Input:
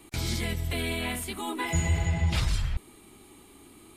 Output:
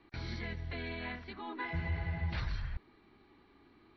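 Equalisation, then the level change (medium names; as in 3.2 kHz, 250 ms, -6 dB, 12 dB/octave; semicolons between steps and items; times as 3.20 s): rippled Chebyshev low-pass 5.9 kHz, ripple 9 dB; distance through air 250 m; band-stop 1.3 kHz, Q 14; -1.0 dB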